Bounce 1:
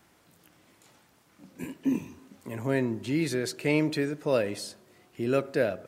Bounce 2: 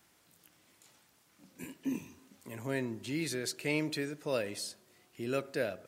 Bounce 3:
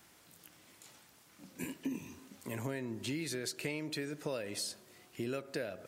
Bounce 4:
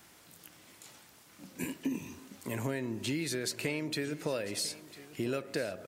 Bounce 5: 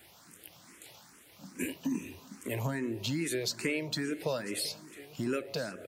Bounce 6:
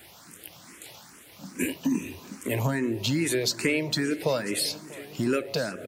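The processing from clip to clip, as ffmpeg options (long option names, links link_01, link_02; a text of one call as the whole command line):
ffmpeg -i in.wav -af "highshelf=frequency=2200:gain=8.5,volume=-8.5dB" out.wav
ffmpeg -i in.wav -af "acompressor=threshold=-39dB:ratio=16,volume=5dB" out.wav
ffmpeg -i in.wav -af "aecho=1:1:999:0.141,volume=4dB" out.wav
ffmpeg -i in.wav -filter_complex "[0:a]asplit=2[link_01][link_02];[link_02]afreqshift=2.4[link_03];[link_01][link_03]amix=inputs=2:normalize=1,volume=4dB" out.wav
ffmpeg -i in.wav -filter_complex "[0:a]asplit=2[link_01][link_02];[link_02]adelay=641.4,volume=-20dB,highshelf=frequency=4000:gain=-14.4[link_03];[link_01][link_03]amix=inputs=2:normalize=0,volume=7dB" out.wav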